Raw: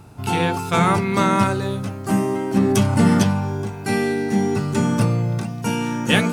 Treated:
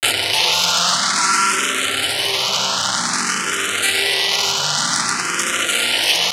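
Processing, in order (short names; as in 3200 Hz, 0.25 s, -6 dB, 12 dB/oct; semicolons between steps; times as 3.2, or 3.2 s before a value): infinite clipping; on a send: analogue delay 0.114 s, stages 4096, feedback 80%, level -7 dB; on the sum: grains, pitch spread up and down by 0 st; small resonant body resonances 1400/3000 Hz, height 9 dB; limiter -17.5 dBFS, peak gain reduction 8.5 dB; weighting filter ITU-R 468; endless phaser +0.52 Hz; gain +8 dB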